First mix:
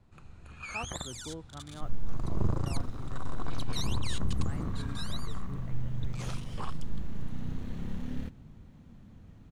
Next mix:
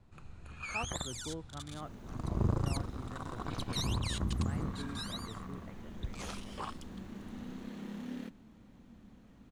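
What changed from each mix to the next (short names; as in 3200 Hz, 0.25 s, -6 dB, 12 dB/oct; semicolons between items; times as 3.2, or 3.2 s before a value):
second sound: add Chebyshev high-pass 190 Hz, order 5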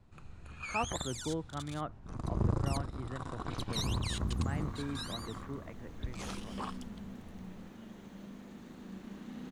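speech +6.5 dB; second sound: entry +1.95 s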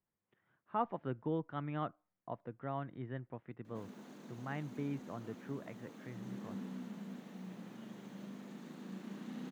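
first sound: muted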